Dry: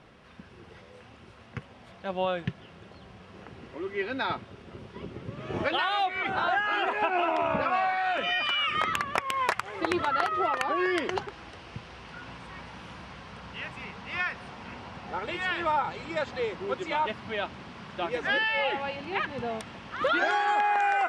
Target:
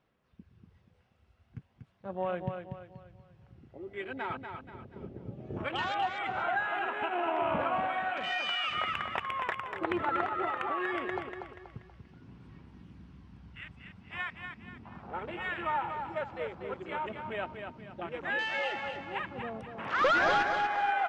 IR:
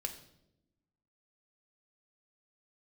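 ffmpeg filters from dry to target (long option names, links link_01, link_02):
-filter_complex "[0:a]asplit=3[link_01][link_02][link_03];[link_01]afade=type=out:start_time=19.77:duration=0.02[link_04];[link_02]asplit=2[link_05][link_06];[link_06]highpass=frequency=720:poles=1,volume=21dB,asoftclip=type=tanh:threshold=-13.5dB[link_07];[link_05][link_07]amix=inputs=2:normalize=0,lowpass=frequency=2700:poles=1,volume=-6dB,afade=type=in:start_time=19.77:duration=0.02,afade=type=out:start_time=20.42:duration=0.02[link_08];[link_03]afade=type=in:start_time=20.42:duration=0.02[link_09];[link_04][link_08][link_09]amix=inputs=3:normalize=0,aphaser=in_gain=1:out_gain=1:delay=1.5:decay=0.27:speed=0.4:type=sinusoidal,afwtdn=0.0178,asplit=2[link_10][link_11];[link_11]aecho=0:1:240|480|720|960|1200:0.473|0.185|0.072|0.0281|0.0109[link_12];[link_10][link_12]amix=inputs=2:normalize=0,volume=-6.5dB"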